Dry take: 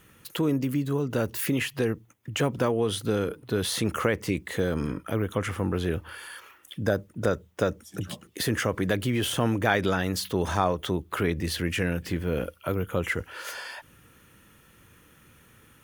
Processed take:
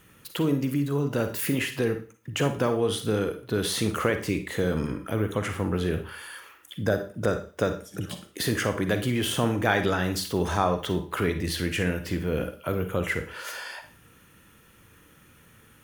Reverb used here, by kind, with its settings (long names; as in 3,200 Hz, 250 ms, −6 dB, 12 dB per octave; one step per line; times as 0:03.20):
four-comb reverb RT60 0.39 s, DRR 7.5 dB